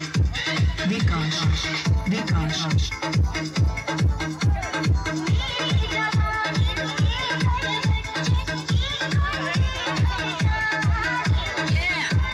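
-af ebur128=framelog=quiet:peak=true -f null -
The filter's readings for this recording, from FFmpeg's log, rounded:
Integrated loudness:
  I:         -23.0 LUFS
  Threshold: -33.0 LUFS
Loudness range:
  LRA:         0.7 LU
  Threshold: -43.2 LUFS
  LRA low:   -23.5 LUFS
  LRA high:  -22.9 LUFS
True peak:
  Peak:      -11.5 dBFS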